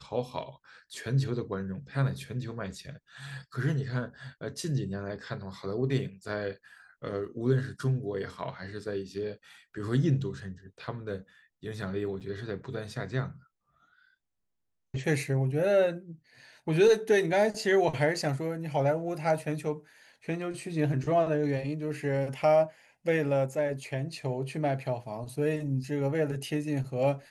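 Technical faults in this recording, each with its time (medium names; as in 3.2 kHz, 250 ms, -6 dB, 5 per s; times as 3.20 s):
12.20–12.21 s: dropout 7.3 ms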